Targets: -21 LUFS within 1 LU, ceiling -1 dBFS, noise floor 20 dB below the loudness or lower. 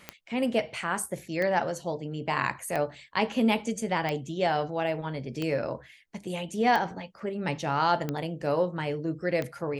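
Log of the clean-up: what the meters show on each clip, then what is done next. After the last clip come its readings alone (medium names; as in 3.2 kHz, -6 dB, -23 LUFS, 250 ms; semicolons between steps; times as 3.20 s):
clicks found 8; loudness -29.5 LUFS; peak level -10.0 dBFS; loudness target -21.0 LUFS
-> de-click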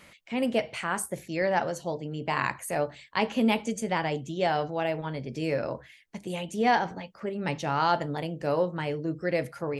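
clicks found 0; loudness -29.5 LUFS; peak level -10.0 dBFS; loudness target -21.0 LUFS
-> trim +8.5 dB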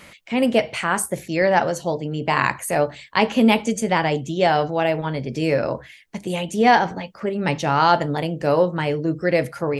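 loudness -21.0 LUFS; peak level -1.5 dBFS; noise floor -46 dBFS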